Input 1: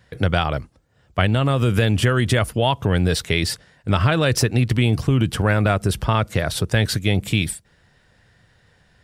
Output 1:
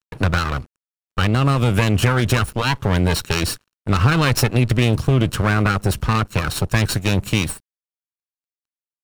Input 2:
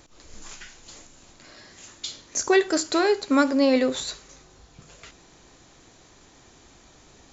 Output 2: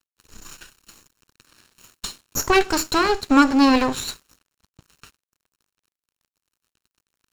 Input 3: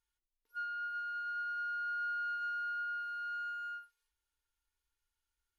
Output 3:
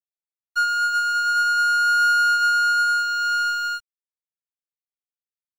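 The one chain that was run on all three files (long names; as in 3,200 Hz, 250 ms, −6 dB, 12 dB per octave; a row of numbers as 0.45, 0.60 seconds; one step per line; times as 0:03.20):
lower of the sound and its delayed copy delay 0.72 ms
dead-zone distortion −46.5 dBFS
loudness normalisation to −19 LKFS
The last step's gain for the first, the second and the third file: +3.5, +5.0, +22.5 decibels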